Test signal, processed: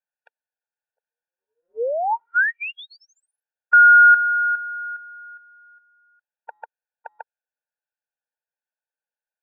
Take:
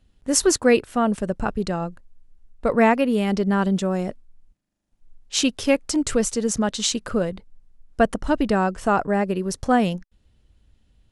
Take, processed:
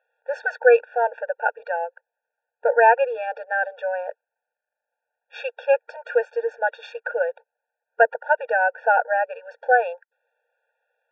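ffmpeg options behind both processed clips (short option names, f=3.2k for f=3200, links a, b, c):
-af "highpass=f=240:w=0.5412,highpass=f=240:w=1.3066,equalizer=f=280:t=q:w=4:g=-9,equalizer=f=440:t=q:w=4:g=5,equalizer=f=930:t=q:w=4:g=6,equalizer=f=1.5k:t=q:w=4:g=9,lowpass=f=2.4k:w=0.5412,lowpass=f=2.4k:w=1.3066,afftfilt=real='re*eq(mod(floor(b*sr/1024/470),2),1)':imag='im*eq(mod(floor(b*sr/1024/470),2),1)':win_size=1024:overlap=0.75,volume=1.5dB"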